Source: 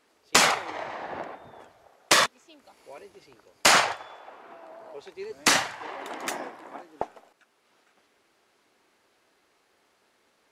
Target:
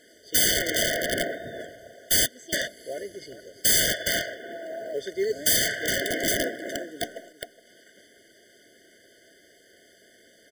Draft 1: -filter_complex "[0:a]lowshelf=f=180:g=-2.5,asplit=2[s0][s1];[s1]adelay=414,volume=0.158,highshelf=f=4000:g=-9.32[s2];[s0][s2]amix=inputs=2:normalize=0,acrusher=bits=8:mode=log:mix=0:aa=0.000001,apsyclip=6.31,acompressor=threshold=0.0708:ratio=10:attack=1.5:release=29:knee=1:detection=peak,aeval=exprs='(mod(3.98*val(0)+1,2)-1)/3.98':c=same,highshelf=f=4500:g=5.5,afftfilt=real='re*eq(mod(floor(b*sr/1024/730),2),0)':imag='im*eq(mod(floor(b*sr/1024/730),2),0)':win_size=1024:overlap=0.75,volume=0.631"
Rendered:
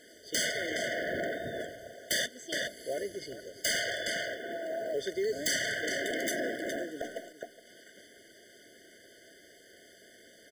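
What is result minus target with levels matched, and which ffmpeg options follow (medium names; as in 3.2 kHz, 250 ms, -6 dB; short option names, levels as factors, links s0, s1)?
compression: peak gain reduction +8.5 dB
-filter_complex "[0:a]lowshelf=f=180:g=-2.5,asplit=2[s0][s1];[s1]adelay=414,volume=0.158,highshelf=f=4000:g=-9.32[s2];[s0][s2]amix=inputs=2:normalize=0,acrusher=bits=8:mode=log:mix=0:aa=0.000001,apsyclip=6.31,acompressor=threshold=0.211:ratio=10:attack=1.5:release=29:knee=1:detection=peak,aeval=exprs='(mod(3.98*val(0)+1,2)-1)/3.98':c=same,highshelf=f=4500:g=5.5,afftfilt=real='re*eq(mod(floor(b*sr/1024/730),2),0)':imag='im*eq(mod(floor(b*sr/1024/730),2),0)':win_size=1024:overlap=0.75,volume=0.631"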